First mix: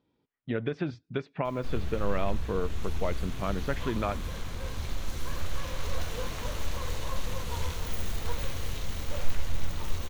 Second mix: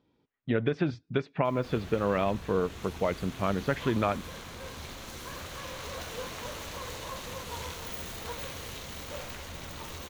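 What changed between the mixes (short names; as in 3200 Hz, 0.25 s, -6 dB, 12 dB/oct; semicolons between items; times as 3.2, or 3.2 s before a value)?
speech +3.5 dB; background: add HPF 220 Hz 6 dB/oct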